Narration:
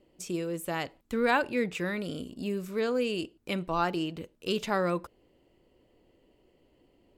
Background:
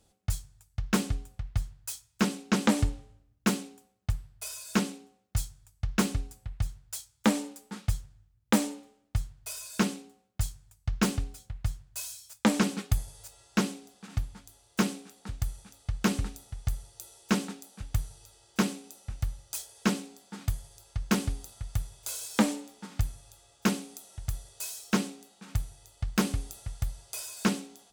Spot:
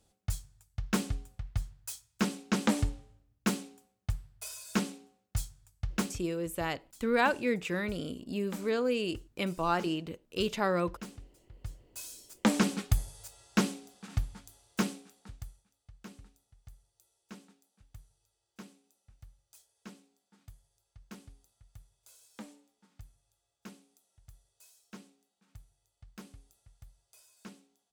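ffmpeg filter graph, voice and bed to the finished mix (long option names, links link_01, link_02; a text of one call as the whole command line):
ffmpeg -i stem1.wav -i stem2.wav -filter_complex "[0:a]adelay=5900,volume=-1dB[link_01];[1:a]volume=14dB,afade=type=out:start_time=5.92:duration=0.3:silence=0.188365,afade=type=in:start_time=11.41:duration=1.3:silence=0.133352,afade=type=out:start_time=14.38:duration=1.27:silence=0.0794328[link_02];[link_01][link_02]amix=inputs=2:normalize=0" out.wav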